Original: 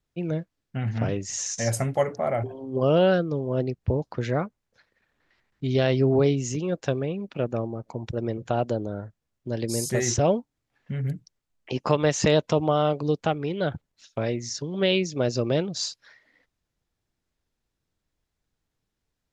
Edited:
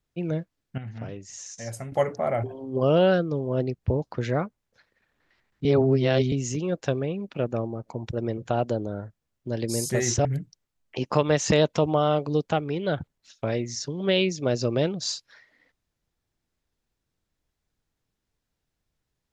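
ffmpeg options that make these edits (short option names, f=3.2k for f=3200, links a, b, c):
-filter_complex "[0:a]asplit=6[a][b][c][d][e][f];[a]atrim=end=0.782[g];[b]atrim=start=0.778:end=1.922,asetpts=PTS-STARTPTS,volume=-10dB[h];[c]atrim=start=1.918:end=5.652[i];[d]atrim=start=5.648:end=6.322,asetpts=PTS-STARTPTS,areverse[j];[e]atrim=start=6.318:end=10.252[k];[f]atrim=start=10.988[l];[g][h]acrossfade=d=0.004:c1=hsin:c2=hsin[m];[m][i]acrossfade=d=0.004:c1=hsin:c2=hsin[n];[n][j]acrossfade=d=0.004:c1=hsin:c2=hsin[o];[o][k]acrossfade=d=0.004:c1=hsin:c2=hsin[p];[p][l]acrossfade=d=0.004:c1=hsin:c2=hsin"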